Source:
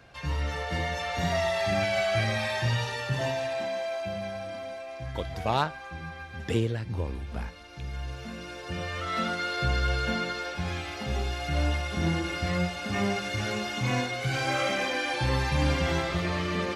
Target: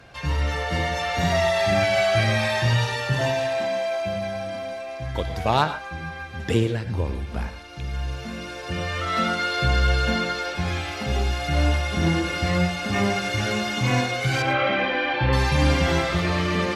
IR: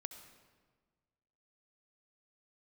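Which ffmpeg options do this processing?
-filter_complex "[0:a]asettb=1/sr,asplit=3[link_01][link_02][link_03];[link_01]atrim=end=14.424[link_04];[link_02]atrim=start=14.42:end=15.33,asetpts=PTS-STARTPTS,afade=type=in:duration=0.004:curve=qsin,afade=type=out:start_time=0.906:duration=0.004:curve=qsin,lowpass=frequency=3300:width=0.5412,lowpass=frequency=3300:width=1.3066[link_05];[link_03]atrim=start=15.326[link_06];[link_04][link_05]acrossfade=duration=0.004:curve1=hsin:curve2=qsin[link_07];[link_07][link_06]acrossfade=duration=0.004:curve1=qsin:curve2=hsin[link_08];[1:a]atrim=start_sample=2205,atrim=end_sample=3969,asetrate=29988,aresample=44100[link_09];[link_08][link_09]afir=irnorm=-1:irlink=0,volume=8dB"

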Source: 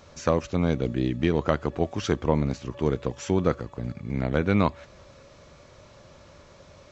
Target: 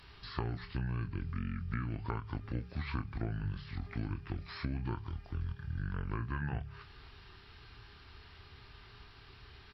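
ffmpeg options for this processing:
ffmpeg -i in.wav -filter_complex "[0:a]bandreject=frequency=50:width_type=h:width=6,bandreject=frequency=100:width_type=h:width=6,bandreject=frequency=150:width_type=h:width=6,bandreject=frequency=200:width_type=h:width=6,bandreject=frequency=250:width_type=h:width=6,asplit=2[link_01][link_02];[link_02]adelay=19,volume=-9dB[link_03];[link_01][link_03]amix=inputs=2:normalize=0,acrossover=split=2800[link_04][link_05];[link_05]acompressor=threshold=-48dB:ratio=4:attack=1:release=60[link_06];[link_04][link_06]amix=inputs=2:normalize=0,firequalizer=gain_entry='entry(130,0);entry(290,-10);entry(760,-17);entry(1700,0)':delay=0.05:min_phase=1,acompressor=threshold=-33dB:ratio=6,asetrate=31311,aresample=44100" out.wav

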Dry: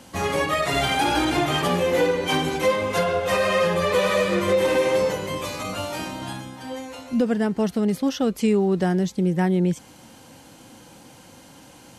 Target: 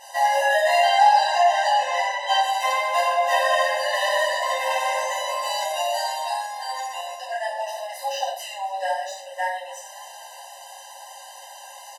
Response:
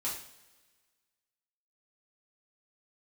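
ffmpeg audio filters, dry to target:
-filter_complex "[0:a]asettb=1/sr,asplit=3[link_01][link_02][link_03];[link_01]atrim=end=0.794[link_04];[link_02]atrim=start=0.79:end=2.41,asetpts=PTS-STARTPTS,afade=type=in:duration=0.004:curve=qsin,afade=type=out:start_time=1.616:duration=0.004:curve=qsin,lowpass=6500[link_05];[link_03]atrim=start=2.406[link_06];[link_04][link_05]acrossfade=duration=0.004:curve1=hsin:curve2=qsin[link_07];[link_07][link_06]acrossfade=duration=0.004:curve1=qsin:curve2=hsin,asplit=4[link_08][link_09][link_10][link_11];[link_09]adelay=269,afreqshift=51,volume=-22dB[link_12];[link_10]adelay=538,afreqshift=102,volume=-28.2dB[link_13];[link_11]adelay=807,afreqshift=153,volume=-34.4dB[link_14];[link_08][link_12][link_13][link_14]amix=inputs=4:normalize=0,acrossover=split=5100[link_15][link_16];[link_16]asoftclip=type=hard:threshold=-39.5dB[link_17];[link_15][link_17]amix=inputs=2:normalize=0[link_18];[1:a]atrim=start_sample=2205,afade=type=out:start_time=0.2:duration=0.01,atrim=end_sample=9261,asetrate=37044,aresample=44100[link_19];[link_18][link_19]afir=irnorm=-1:irlink=0,asplit=2[link_20][link_21];[link_21]acompressor=threshold=-25dB:ratio=6,volume=2dB[link_22];[link_20][link_22]amix=inputs=2:normalize=0,afftfilt=real='re*eq(mod(floor(b*sr/1024/520),2),1)':imag='im*eq(mod(floor(b*sr/1024/520),2),1)':win_size=1024:overlap=0.75,volume=-1.5dB"

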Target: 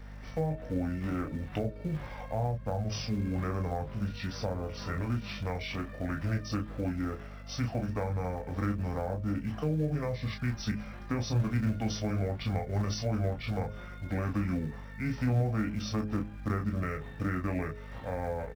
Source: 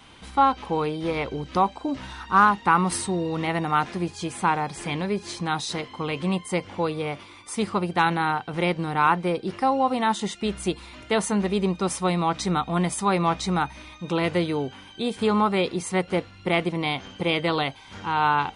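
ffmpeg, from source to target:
ffmpeg -i in.wav -filter_complex "[0:a]asetrate=25476,aresample=44100,atempo=1.73107,asplit=2[link_01][link_02];[link_02]aecho=0:1:19|33:0.473|0.473[link_03];[link_01][link_03]amix=inputs=2:normalize=0,aeval=exprs='val(0)+0.0126*(sin(2*PI*50*n/s)+sin(2*PI*2*50*n/s)/2+sin(2*PI*3*50*n/s)/3+sin(2*PI*4*50*n/s)/4+sin(2*PI*5*50*n/s)/5)':channel_layout=same,asplit=2[link_04][link_05];[link_05]acrusher=bits=3:mode=log:mix=0:aa=0.000001,volume=-10.5dB[link_06];[link_04][link_06]amix=inputs=2:normalize=0,bandreject=frequency=105.3:width_type=h:width=4,bandreject=frequency=210.6:width_type=h:width=4,bandreject=frequency=315.9:width_type=h:width=4,bandreject=frequency=421.2:width_type=h:width=4,bandreject=frequency=526.5:width_type=h:width=4,bandreject=frequency=631.8:width_type=h:width=4,acrossover=split=230[link_07][link_08];[link_08]acompressor=threshold=-26dB:ratio=6[link_09];[link_07][link_09]amix=inputs=2:normalize=0,volume=-8dB" out.wav

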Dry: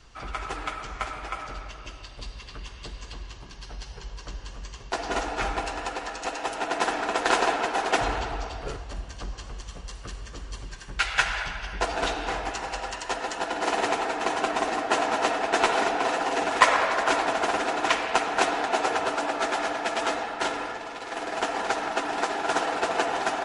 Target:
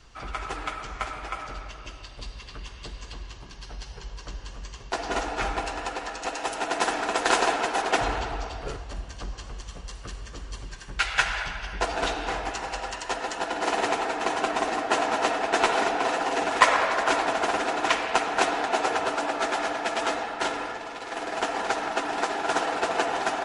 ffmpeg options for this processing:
ffmpeg -i in.wav -filter_complex "[0:a]asettb=1/sr,asplit=3[link_01][link_02][link_03];[link_01]atrim=end=6.354[link_04];[link_02]atrim=start=6.35:end=7.82,asetpts=PTS-STARTPTS,afade=type=in:duration=0.004:curve=qsin,afade=type=out:start_time=1.466:duration=0.004:curve=qsin,highshelf=frequency=6300:gain=6.5[link_05];[link_03]atrim=start=7.816[link_06];[link_04][link_05]acrossfade=duration=0.004:curve1=hsin:curve2=qsin[link_07];[link_07][link_06]acrossfade=duration=0.004:curve1=qsin:curve2=hsin" out.wav

